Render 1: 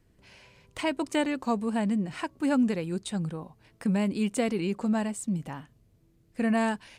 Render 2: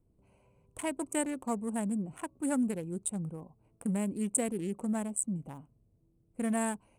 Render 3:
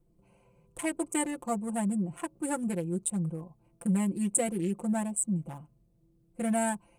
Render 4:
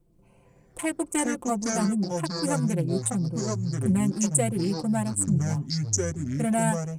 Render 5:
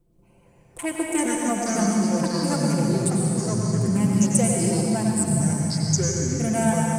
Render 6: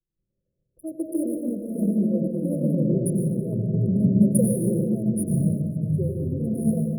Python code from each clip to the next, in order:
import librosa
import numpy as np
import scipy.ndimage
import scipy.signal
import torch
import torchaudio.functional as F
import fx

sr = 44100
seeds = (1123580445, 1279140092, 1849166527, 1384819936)

y1 = fx.wiener(x, sr, points=25)
y1 = fx.high_shelf_res(y1, sr, hz=6600.0, db=13.5, q=3.0)
y1 = y1 * librosa.db_to_amplitude(-5.5)
y2 = y1 + 0.98 * np.pad(y1, (int(5.8 * sr / 1000.0), 0))[:len(y1)]
y3 = fx.echo_pitch(y2, sr, ms=127, semitones=-5, count=2, db_per_echo=-3.0)
y3 = y3 * librosa.db_to_amplitude(3.5)
y4 = fx.rev_plate(y3, sr, seeds[0], rt60_s=2.7, hf_ratio=0.9, predelay_ms=80, drr_db=-1.5)
y5 = fx.wiener(y4, sr, points=9)
y5 = fx.brickwall_bandstop(y5, sr, low_hz=650.0, high_hz=9500.0)
y5 = fx.band_widen(y5, sr, depth_pct=70)